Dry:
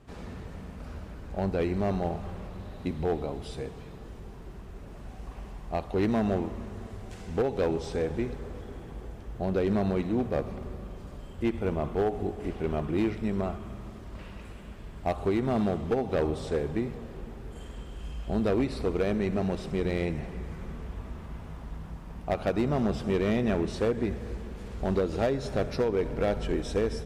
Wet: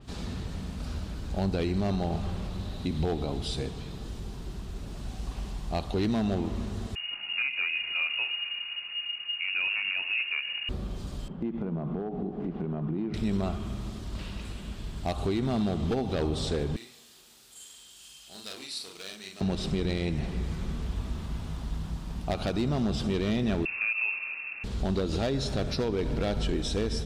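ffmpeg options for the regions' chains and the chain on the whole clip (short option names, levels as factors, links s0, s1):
-filter_complex "[0:a]asettb=1/sr,asplit=3[s0][s1][s2];[s0]atrim=end=6.954[s3];[s1]atrim=start=6.95:end=10.69,asetpts=PTS-STARTPTS,afade=t=in:d=0.004:c=qsin,afade=t=out:st=3.736:d=0.004:c=qsin,equalizer=f=190:t=o:w=1.7:g=-11.5,lowpass=f=2500:t=q:w=0.5098,lowpass=f=2500:t=q:w=0.6013,lowpass=f=2500:t=q:w=0.9,lowpass=f=2500:t=q:w=2.563,afreqshift=-2900[s4];[s2]atrim=start=10.686[s5];[s3][s4]acrossfade=d=0.004:c1=hsin:c2=qsin[s6];[s6][s5]acrossfade=d=0.004:c1=qsin:c2=hsin,asettb=1/sr,asplit=3[s7][s8][s9];[s7]atrim=end=11.284[s10];[s8]atrim=start=11.28:end=13.14,asetpts=PTS-STARTPTS,afade=t=in:d=0.004:c=qsin,afade=t=out:st=1.856:d=0.004:c=qsin,lowpass=1300,lowshelf=f=120:t=q:w=3:g=-10.5,acompressor=threshold=0.0251:ratio=6:attack=3.2:release=140:knee=1:detection=peak[s11];[s9]atrim=start=13.136[s12];[s10][s11]acrossfade=d=0.004:c1=hsin:c2=qsin[s13];[s13][s12]acrossfade=d=0.004:c1=qsin:c2=hsin,asettb=1/sr,asplit=3[s14][s15][s16];[s14]atrim=end=16.764[s17];[s15]atrim=start=16.76:end=19.41,asetpts=PTS-STARTPTS,afade=t=in:d=0.004:c=qsin,afade=t=out:st=2.646:d=0.004:c=qsin,aderivative,asplit=2[s18][s19];[s19]adelay=42,volume=0.75[s20];[s18][s20]amix=inputs=2:normalize=0,atrim=end_sample=116865[s21];[s16]atrim=start=19.406[s22];[s17][s21]acrossfade=d=0.004:c1=hsin:c2=qsin[s23];[s23][s22]acrossfade=d=0.004:c1=qsin:c2=hsin,asettb=1/sr,asplit=3[s24][s25][s26];[s24]atrim=end=23.654[s27];[s25]atrim=start=23.65:end=24.64,asetpts=PTS-STARTPTS,afade=t=in:d=0.004:c=qsin,afade=t=out:st=0.986:d=0.004:c=qsin,highpass=f=180:w=0.5412,highpass=f=180:w=1.3066,lowpass=f=2500:t=q:w=0.5098,lowpass=f=2500:t=q:w=0.6013,lowpass=f=2500:t=q:w=0.9,lowpass=f=2500:t=q:w=2.563,afreqshift=-2900[s28];[s26]atrim=start=24.636[s29];[s27][s28]acrossfade=d=0.004:c1=hsin:c2=qsin[s30];[s30][s29]acrossfade=d=0.004:c1=qsin:c2=hsin,equalizer=f=500:t=o:w=1:g=-6,equalizer=f=1000:t=o:w=1:g=-3,equalizer=f=2000:t=o:w=1:g=-5,equalizer=f=4000:t=o:w=1:g=8,equalizer=f=8000:t=o:w=1:g=4,alimiter=level_in=1.26:limit=0.0631:level=0:latency=1:release=92,volume=0.794,adynamicequalizer=threshold=0.00158:dfrequency=4700:dqfactor=0.7:tfrequency=4700:tqfactor=0.7:attack=5:release=100:ratio=0.375:range=2:mode=cutabove:tftype=highshelf,volume=2"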